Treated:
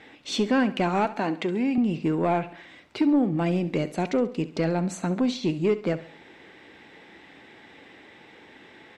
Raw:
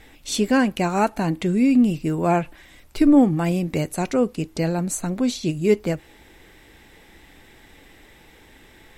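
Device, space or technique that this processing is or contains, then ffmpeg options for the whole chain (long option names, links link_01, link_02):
AM radio: -filter_complex "[0:a]highpass=180,lowpass=3700,acompressor=threshold=-20dB:ratio=4,asoftclip=type=tanh:threshold=-16dB,asettb=1/sr,asplit=3[link_01][link_02][link_03];[link_01]atrim=end=1.054[link_04];[link_02]atrim=start=1.05:end=1.78,asetpts=PTS-STARTPTS,afade=type=in:duration=0.004:curve=qsin,afade=type=out:start_time=0.726:duration=0.004:curve=qsin,highpass=270[link_05];[link_03]atrim=start=1.776[link_06];[link_04][link_05]acrossfade=duration=0.004:curve1=hsin:curve2=qsin[link_07];[link_07][link_06]acrossfade=duration=0.004:curve1=qsin:curve2=hsin,asettb=1/sr,asplit=3[link_08][link_09][link_10];[link_08]atrim=end=3.164[link_11];[link_09]atrim=start=3.16:end=4.43,asetpts=PTS-STARTPTS,afade=type=in:duration=0.004:curve=qsin,afade=type=out:start_time=1.266:duration=0.004:curve=qsin,equalizer=frequency=1300:width=1.1:gain=-4.5[link_12];[link_10]atrim=start=4.426[link_13];[link_11][link_12]acrossfade=duration=0.004:curve1=hsin:curve2=qsin[link_14];[link_14][link_13]acrossfade=duration=0.004:curve1=qsin:curve2=hsin,aecho=1:1:68|136|204|272:0.168|0.0722|0.031|0.0133,volume=2dB"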